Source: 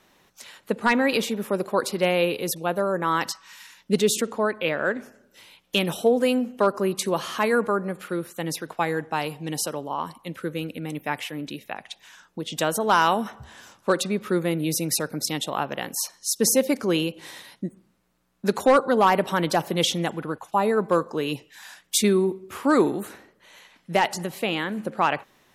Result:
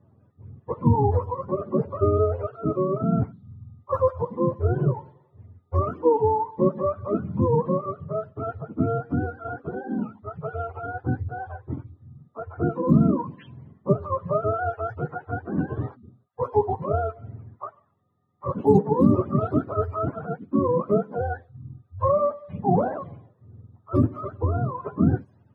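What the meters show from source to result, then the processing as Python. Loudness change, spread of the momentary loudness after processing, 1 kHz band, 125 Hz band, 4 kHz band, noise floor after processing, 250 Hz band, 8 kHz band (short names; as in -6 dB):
-1.0 dB, 15 LU, -3.0 dB, +8.5 dB, under -35 dB, -62 dBFS, +1.0 dB, under -40 dB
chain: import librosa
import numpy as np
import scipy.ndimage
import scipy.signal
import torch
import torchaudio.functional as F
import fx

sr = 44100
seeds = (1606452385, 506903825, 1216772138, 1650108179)

y = fx.octave_mirror(x, sr, pivot_hz=470.0)
y = fx.env_lowpass(y, sr, base_hz=1500.0, full_db=-21.0)
y = y * librosa.db_to_amplitude(1.0)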